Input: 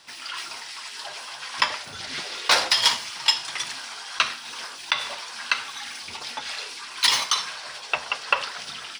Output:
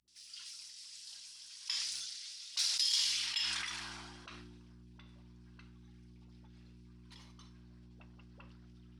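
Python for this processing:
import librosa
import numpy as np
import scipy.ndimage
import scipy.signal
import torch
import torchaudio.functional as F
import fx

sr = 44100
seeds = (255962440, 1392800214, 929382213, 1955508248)

y = F.preemphasis(torch.from_numpy(x), 0.9).numpy()
y = fx.dmg_buzz(y, sr, base_hz=60.0, harmonics=6, level_db=-42.0, tilt_db=-8, odd_only=False)
y = fx.dispersion(y, sr, late='highs', ms=79.0, hz=330.0)
y = fx.filter_sweep_bandpass(y, sr, from_hz=5500.0, to_hz=210.0, start_s=2.87, end_s=4.74, q=1.1)
y = fx.sustainer(y, sr, db_per_s=25.0)
y = y * librosa.db_to_amplitude(-8.0)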